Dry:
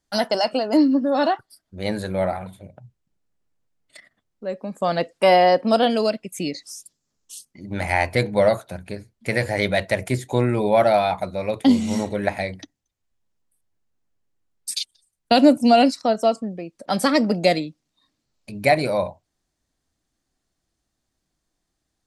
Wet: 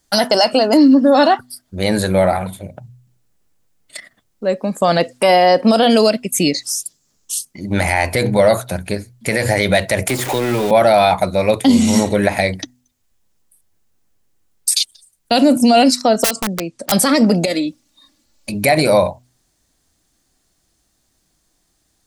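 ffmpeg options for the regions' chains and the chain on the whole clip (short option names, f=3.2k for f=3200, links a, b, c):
-filter_complex "[0:a]asettb=1/sr,asplit=3[a][b][c];[a]atrim=end=10.094[d];[b]atrim=start=10.09:end=10.71,asetpts=PTS-STARTPTS,afade=t=in:d=0.004:c=qsin,afade=t=out:st=0.616:d=0.004:c=qsin,aeval=exprs='val(0)+0.5*0.0531*sgn(val(0))':c=same,acrossover=split=230|3000[e][f][g];[f]acompressor=threshold=-26dB:ratio=6:attack=3.2:release=140:knee=2.83:detection=peak[h];[e][h][g]amix=inputs=3:normalize=0,bass=f=250:g=-12,treble=f=4k:g=-10[i];[c]atrim=start=10.706[j];[d][i]acrossfade=d=0.004:c1=hsin:c2=qsin[k];[k][j]acrossfade=d=0.004:c1=qsin:c2=hsin,asettb=1/sr,asplit=3[l][m][n];[l]atrim=end=16.244[o];[m]atrim=start=16.24:end=16.92,asetpts=PTS-STARTPTS,afade=t=in:d=0.004:c=qsin,afade=t=out:st=0.676:d=0.004:c=qsin,lowpass=f=9.5k:w=0.5412,lowpass=f=9.5k:w=1.3066,acrossover=split=130|3000[p][q][r];[q]acompressor=threshold=-29dB:ratio=5:attack=3.2:release=140:knee=2.83:detection=peak[s];[p][s][r]amix=inputs=3:normalize=0,aeval=exprs='(mod(18.8*val(0)+1,2)-1)/18.8':c=same[t];[n]atrim=start=16.916[u];[o][t]acrossfade=d=0.004:c1=hsin:c2=qsin[v];[v][u]acrossfade=d=0.004:c1=qsin:c2=hsin,asettb=1/sr,asplit=3[w][x][y];[w]atrim=end=17.454[z];[x]atrim=start=17.45:end=18.54,asetpts=PTS-STARTPTS,afade=t=in:d=0.004:c=qsin,afade=t=out:st=1.086:d=0.004:c=qsin,aecho=1:1:3.5:0.69,atrim=end_sample=48069,acompressor=threshold=-26dB:ratio=4:attack=3.2:release=140:knee=1:detection=peak[aa];[y]atrim=start=18.536[ab];[z][aa]acrossfade=d=0.004:c1=hsin:c2=qsin[ac];[ac][ab]acrossfade=d=0.004:c1=qsin:c2=hsin,highshelf=f=5.7k:g=9,bandreject=f=124.2:t=h:w=4,bandreject=f=248.4:t=h:w=4,alimiter=level_in=13dB:limit=-1dB:release=50:level=0:latency=1,volume=-2.5dB"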